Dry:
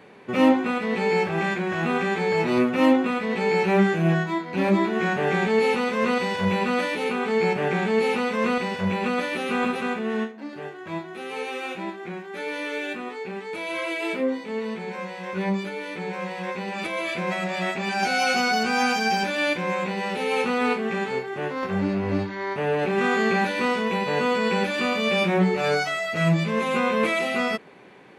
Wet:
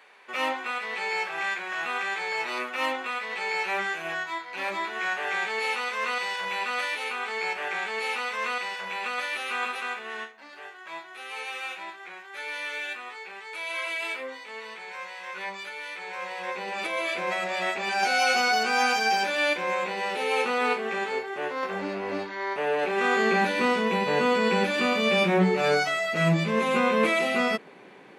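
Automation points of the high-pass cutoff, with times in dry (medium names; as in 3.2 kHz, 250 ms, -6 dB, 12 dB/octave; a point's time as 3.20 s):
15.97 s 1 kHz
16.66 s 430 Hz
23.00 s 430 Hz
23.55 s 160 Hz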